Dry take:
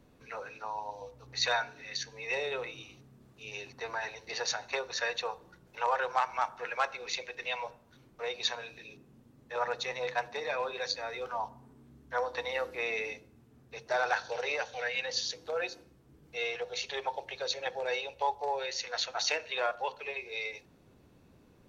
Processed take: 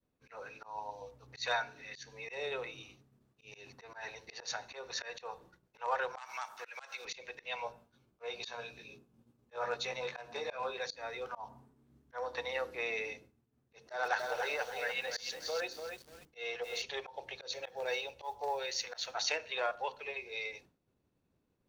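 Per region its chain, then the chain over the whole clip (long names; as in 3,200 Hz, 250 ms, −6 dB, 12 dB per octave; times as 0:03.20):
0:06.18–0:07.05: spectral tilt +4.5 dB per octave + downward compressor 2.5 to 1, threshold −36 dBFS
0:07.56–0:10.74: notch filter 1,900 Hz, Q 8.9 + double-tracking delay 17 ms −4 dB
0:13.75–0:16.82: parametric band 110 Hz −13.5 dB 0.31 octaves + notch filter 2,400 Hz, Q 16 + feedback echo at a low word length 291 ms, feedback 35%, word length 8 bits, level −6 dB
0:17.52–0:19.15: parametric band 5,800 Hz +3.5 dB 1.1 octaves + noise that follows the level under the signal 32 dB
whole clip: downward expander −50 dBFS; volume swells 151 ms; level −3 dB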